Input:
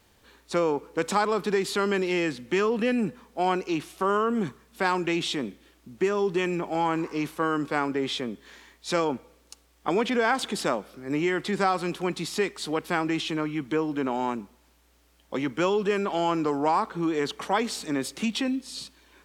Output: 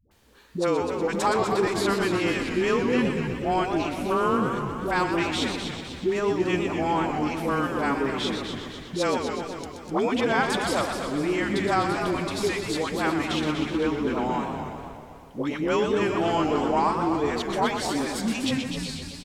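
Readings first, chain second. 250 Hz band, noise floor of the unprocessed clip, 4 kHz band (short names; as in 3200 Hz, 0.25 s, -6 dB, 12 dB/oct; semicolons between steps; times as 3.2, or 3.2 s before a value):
+2.0 dB, -62 dBFS, +2.0 dB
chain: dispersion highs, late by 0.112 s, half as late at 490 Hz; frequency-shifting echo 0.256 s, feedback 42%, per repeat -87 Hz, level -9 dB; warbling echo 0.122 s, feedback 70%, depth 165 cents, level -7.5 dB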